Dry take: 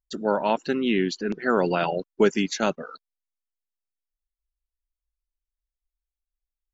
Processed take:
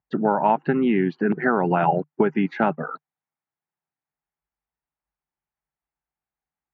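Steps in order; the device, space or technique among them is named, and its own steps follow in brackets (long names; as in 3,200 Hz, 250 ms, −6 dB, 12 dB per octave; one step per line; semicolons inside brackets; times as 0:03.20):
bass amplifier (downward compressor 5 to 1, threshold −26 dBFS, peak gain reduction 11.5 dB; loudspeaker in its box 81–2,100 Hz, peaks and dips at 150 Hz +10 dB, 520 Hz −5 dB, 820 Hz +8 dB)
level +9 dB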